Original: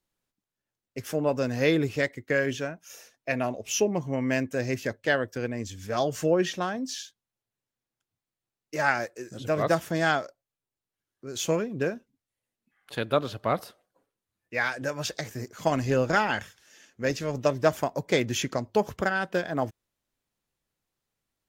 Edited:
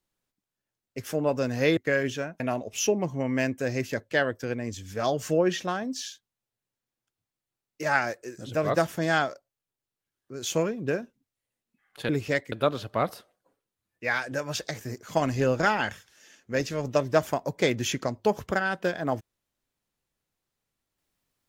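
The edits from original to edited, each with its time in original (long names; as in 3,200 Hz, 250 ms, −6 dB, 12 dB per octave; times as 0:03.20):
0:01.77–0:02.20: move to 0:13.02
0:02.83–0:03.33: remove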